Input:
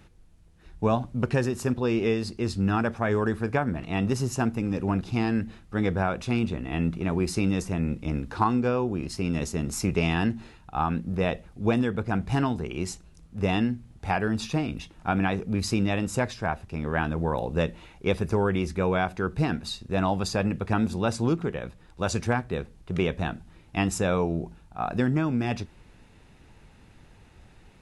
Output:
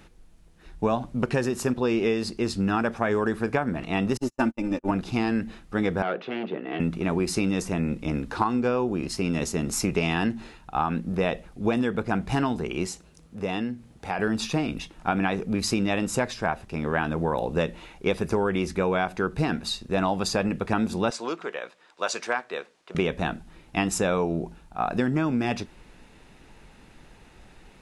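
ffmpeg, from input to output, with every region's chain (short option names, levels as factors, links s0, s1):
-filter_complex "[0:a]asettb=1/sr,asplit=3[s0][s1][s2];[s0]atrim=end=4.174[s3];[s1]atrim=start=4.17:end=4.91,asetpts=PTS-STARTPTS,afade=t=in:d=0.004:c=qsin,afade=t=out:st=0.736:d=0.004:c=qsin,acrossover=split=4400[s4][s5];[s5]acompressor=threshold=0.00794:ratio=4:attack=1:release=60[s6];[s4][s6]amix=inputs=2:normalize=0,agate=range=0.00355:threshold=0.0447:ratio=16:release=100:detection=peak,aecho=1:1:3.4:0.77,atrim=end_sample=32634[s7];[s2]atrim=start=4.906[s8];[s3][s7]acrossfade=d=0.004:c1=hsin:c2=qsin[s9];[s9][s8]acrossfade=d=0.004:c1=qsin:c2=hsin,asettb=1/sr,asplit=3[s10][s11][s12];[s10]atrim=end=6.024[s13];[s11]atrim=start=6.02:end=6.8,asetpts=PTS-STARTPTS,afade=t=in:d=0.004:c=qsin,afade=t=out:st=0.776:d=0.004:c=qsin,volume=15,asoftclip=hard,volume=0.0668,highpass=f=200:w=0.5412,highpass=f=200:w=1.3066,equalizer=f=240:t=q:w=4:g=-8,equalizer=f=420:t=q:w=4:g=5,equalizer=f=1000:t=q:w=4:g=-5,equalizer=f=2400:t=q:w=4:g=-6,lowpass=f=3100:w=0.5412,lowpass=f=3100:w=1.3066[s14];[s12]atrim=start=6.796[s15];[s13][s14]acrossfade=d=0.004:c1=hsin:c2=qsin[s16];[s16][s15]acrossfade=d=0.004:c1=qsin:c2=hsin,asettb=1/sr,asplit=3[s17][s18][s19];[s17]atrim=end=12.864[s20];[s18]atrim=start=12.86:end=14.19,asetpts=PTS-STARTPTS,afade=t=in:d=0.004:c=qsin,afade=t=out:st=1.326:d=0.004:c=qsin,highpass=63,equalizer=f=490:w=3.9:g=4,acompressor=threshold=0.01:ratio=1.5:attack=3.2:release=140:knee=1:detection=peak[s21];[s19]atrim=start=14.186[s22];[s20][s21]acrossfade=d=0.004:c1=hsin:c2=qsin[s23];[s23][s22]acrossfade=d=0.004:c1=qsin:c2=hsin,asettb=1/sr,asplit=3[s24][s25][s26];[s24]atrim=end=21.104[s27];[s25]atrim=start=21.1:end=22.95,asetpts=PTS-STARTPTS,afade=t=in:d=0.004:c=qsin,afade=t=out:st=1.846:d=0.004:c=qsin,highpass=590,lowpass=7300,bandreject=f=820:w=11[s28];[s26]atrim=start=22.946[s29];[s27][s28]acrossfade=d=0.004:c1=hsin:c2=qsin[s30];[s30][s29]acrossfade=d=0.004:c1=qsin:c2=hsin,equalizer=f=90:w=1.1:g=-10,acompressor=threshold=0.0562:ratio=3,volume=1.68"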